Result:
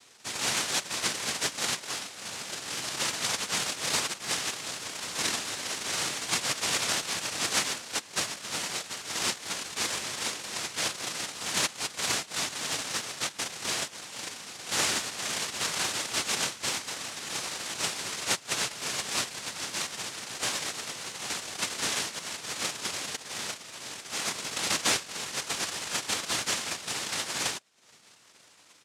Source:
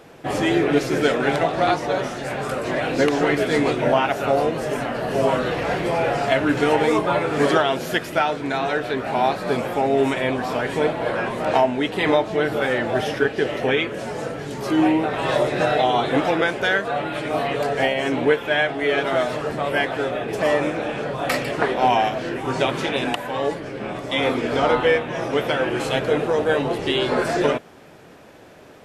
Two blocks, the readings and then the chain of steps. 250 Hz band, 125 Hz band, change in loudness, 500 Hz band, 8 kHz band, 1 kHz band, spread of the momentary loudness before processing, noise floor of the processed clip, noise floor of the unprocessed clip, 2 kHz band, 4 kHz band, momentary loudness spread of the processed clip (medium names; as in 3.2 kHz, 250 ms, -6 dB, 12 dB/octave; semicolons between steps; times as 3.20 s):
-20.5 dB, -17.0 dB, -9.0 dB, -22.5 dB, +12.0 dB, -15.0 dB, 7 LU, -56 dBFS, -45 dBFS, -9.0 dB, 0.0 dB, 8 LU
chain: reverb removal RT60 0.53 s; comb 6.1 ms, depth 91%; full-wave rectifier; noise-vocoded speech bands 1; trim -8 dB